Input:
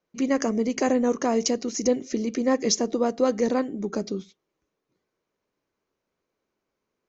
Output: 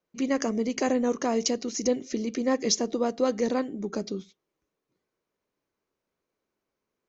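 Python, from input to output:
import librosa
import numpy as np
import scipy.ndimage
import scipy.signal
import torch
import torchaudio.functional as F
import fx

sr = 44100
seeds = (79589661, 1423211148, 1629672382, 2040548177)

y = fx.dynamic_eq(x, sr, hz=3600.0, q=1.2, threshold_db=-47.0, ratio=4.0, max_db=4)
y = y * 10.0 ** (-3.0 / 20.0)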